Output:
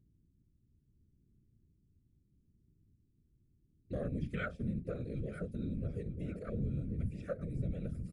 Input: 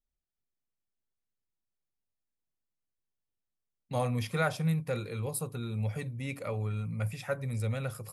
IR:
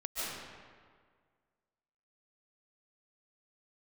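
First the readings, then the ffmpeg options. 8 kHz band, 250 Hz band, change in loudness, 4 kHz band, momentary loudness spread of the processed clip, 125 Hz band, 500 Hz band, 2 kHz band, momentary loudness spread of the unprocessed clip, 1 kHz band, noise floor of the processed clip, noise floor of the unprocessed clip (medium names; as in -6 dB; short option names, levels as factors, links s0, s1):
under -25 dB, -2.5 dB, -6.0 dB, -16.5 dB, 4 LU, -6.5 dB, -7.0 dB, -9.5 dB, 6 LU, -14.0 dB, -73 dBFS, under -85 dBFS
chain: -filter_complex "[0:a]acrossover=split=3000[s0][s1];[s1]acompressor=threshold=0.00178:ratio=4:attack=1:release=60[s2];[s0][s2]amix=inputs=2:normalize=0,afwtdn=0.0141,highshelf=f=3200:g=7.5,bandreject=f=60:t=h:w=6,bandreject=f=120:t=h:w=6,bandreject=f=180:t=h:w=6,bandreject=f=240:t=h:w=6,acompressor=threshold=0.00708:ratio=2,aeval=exprs='val(0)+0.000251*(sin(2*PI*60*n/s)+sin(2*PI*2*60*n/s)/2+sin(2*PI*3*60*n/s)/3+sin(2*PI*4*60*n/s)/4+sin(2*PI*5*60*n/s)/5)':c=same,aphaser=in_gain=1:out_gain=1:delay=2.3:decay=0.22:speed=0.74:type=triangular,afftfilt=real='hypot(re,im)*cos(2*PI*random(0))':imag='hypot(re,im)*sin(2*PI*random(1))':win_size=512:overlap=0.75,asuperstop=centerf=900:order=4:qfactor=1.1,asplit=2[s3][s4];[s4]adelay=942,lowpass=f=1300:p=1,volume=0.376,asplit=2[s5][s6];[s6]adelay=942,lowpass=f=1300:p=1,volume=0.39,asplit=2[s7][s8];[s8]adelay=942,lowpass=f=1300:p=1,volume=0.39,asplit=2[s9][s10];[s10]adelay=942,lowpass=f=1300:p=1,volume=0.39[s11];[s3][s5][s7][s9][s11]amix=inputs=5:normalize=0,aresample=22050,aresample=44100,volume=2.51"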